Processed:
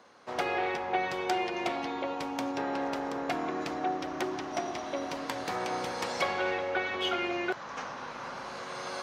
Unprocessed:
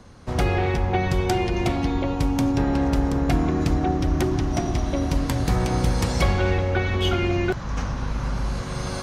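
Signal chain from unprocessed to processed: HPF 510 Hz 12 dB/oct; bell 11000 Hz -11 dB 1.5 oct; gain -2.5 dB

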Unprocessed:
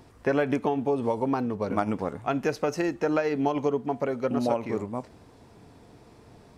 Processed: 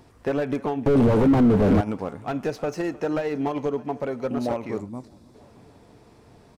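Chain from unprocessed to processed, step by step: feedback echo 0.308 s, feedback 59%, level -22.5 dB; 0.86–1.81 sample leveller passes 5; 4.8–5.35 spectral gain 380–3400 Hz -8 dB; slew limiter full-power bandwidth 61 Hz

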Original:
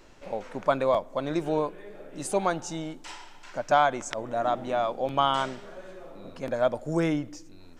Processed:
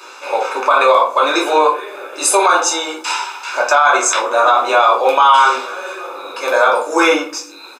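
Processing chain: steep high-pass 450 Hz 36 dB/oct; comb 0.8 ms, depth 72%; shoebox room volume 220 m³, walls furnished, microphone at 2.7 m; maximiser +17.5 dB; gain -1 dB

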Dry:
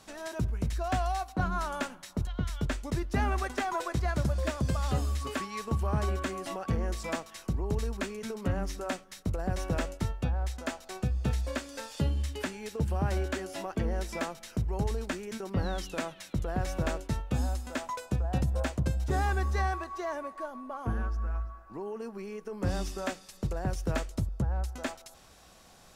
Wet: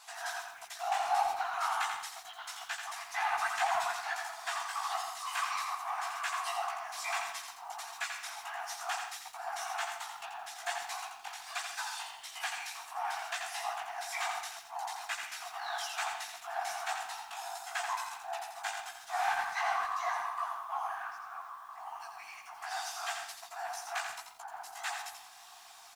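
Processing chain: comb 2.5 ms, depth 36%; soft clip -26.5 dBFS, distortion -13 dB; whisperiser; chorus voices 2, 1.5 Hz, delay 16 ms, depth 3 ms; brick-wall FIR high-pass 660 Hz; speakerphone echo 0.13 s, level -10 dB; on a send at -19 dB: reverb RT60 0.45 s, pre-delay 96 ms; on the sum: lo-fi delay 85 ms, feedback 35%, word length 11-bit, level -5.5 dB; gain +6 dB

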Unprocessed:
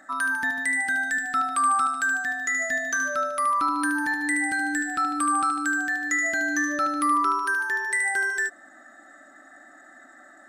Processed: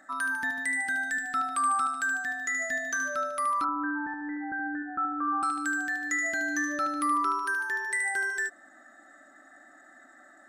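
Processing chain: 3.64–5.43 elliptic low-pass 1500 Hz, stop band 80 dB; gain -4.5 dB

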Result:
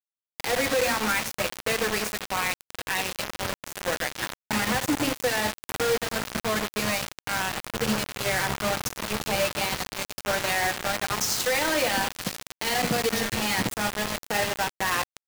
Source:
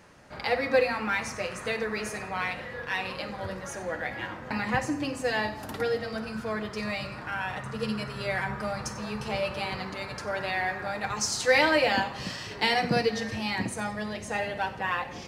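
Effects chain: limiter -20 dBFS, peak gain reduction 11.5 dB; bit-crush 5-bit; gain +4 dB

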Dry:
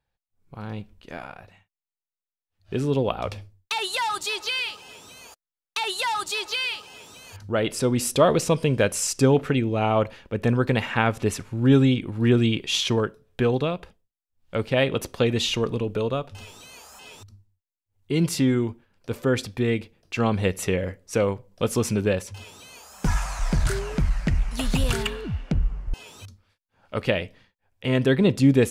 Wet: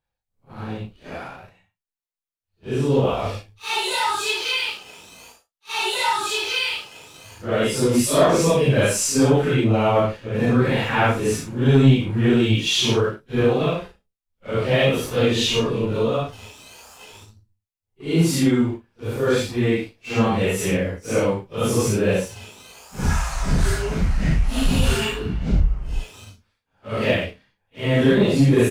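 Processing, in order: phase scrambler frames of 0.2 s; sample leveller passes 1; doubler 37 ms -9.5 dB

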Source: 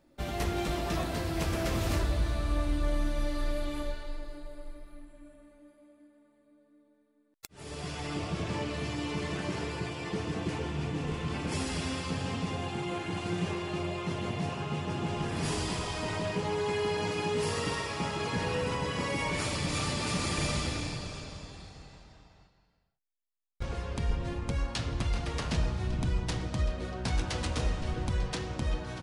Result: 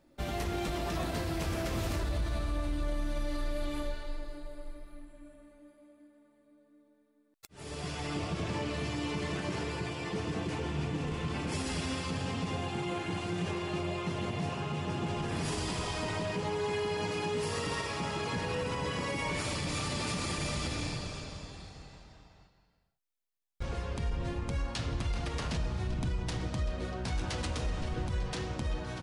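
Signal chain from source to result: limiter -25 dBFS, peak gain reduction 7.5 dB

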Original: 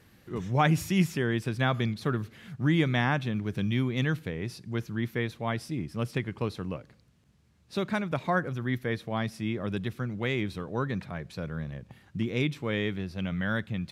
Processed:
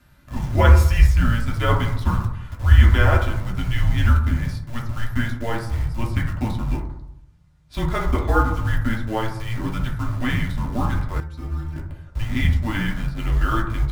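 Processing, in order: in parallel at -5.5 dB: bit-crush 6-bit; on the sum: reverb RT60 0.80 s, pre-delay 3 ms, DRR -3 dB; frequency shift -230 Hz; 11.2–11.76 metallic resonator 78 Hz, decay 0.25 s, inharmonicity 0.008; gain -1 dB

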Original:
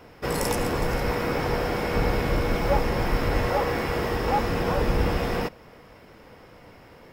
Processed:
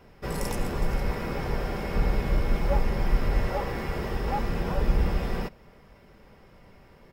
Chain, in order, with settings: low shelf 130 Hz +10.5 dB; comb 5.1 ms, depth 34%; gain -7.5 dB

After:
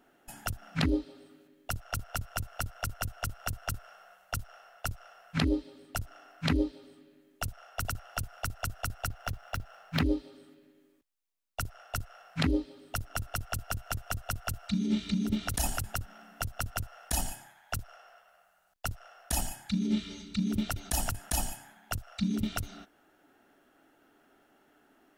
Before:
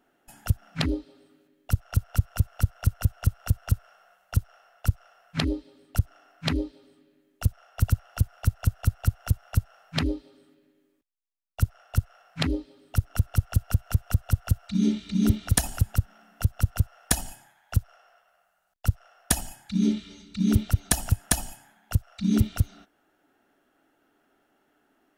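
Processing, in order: 9.09–10.04 median filter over 5 samples; negative-ratio compressor -27 dBFS, ratio -1; gain -2 dB

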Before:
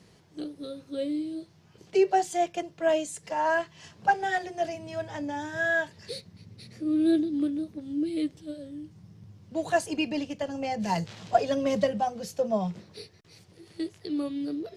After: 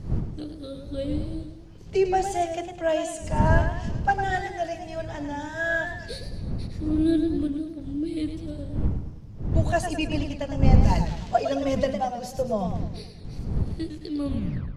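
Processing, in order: tape stop at the end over 0.49 s; wind noise 120 Hz -29 dBFS; warbling echo 0.106 s, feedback 48%, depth 102 cents, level -8 dB

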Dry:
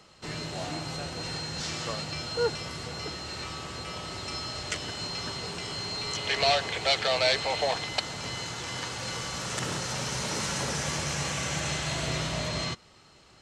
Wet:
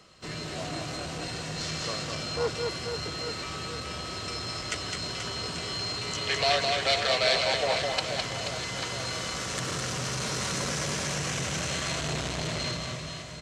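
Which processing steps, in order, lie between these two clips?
Butterworth band-stop 860 Hz, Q 7.7; on a send: reverse bouncing-ball echo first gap 0.21 s, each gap 1.3×, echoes 5; on the sum: core saturation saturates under 1200 Hz

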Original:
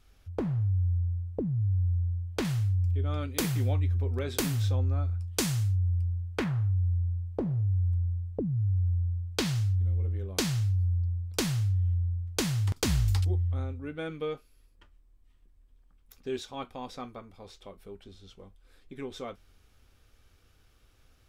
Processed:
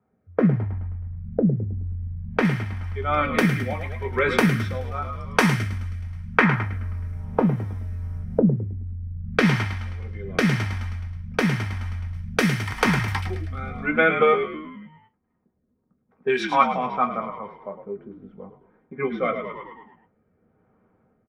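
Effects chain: 6.52–8.24 G.711 law mismatch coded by mu; HPF 85 Hz 24 dB/oct; low-pass opened by the level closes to 490 Hz, open at -28.5 dBFS; AGC gain up to 4 dB; spectral noise reduction 9 dB; frequency-shifting echo 0.106 s, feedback 56%, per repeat -51 Hz, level -9.5 dB; compressor, threshold -30 dBFS, peak gain reduction 10 dB; 12.14–12.81 high shelf 3800 Hz +8 dB; rotary speaker horn 0.9 Hz; band shelf 1200 Hz +9 dB 2.5 oct; reverb, pre-delay 3 ms, DRR 3.5 dB; gain +4 dB

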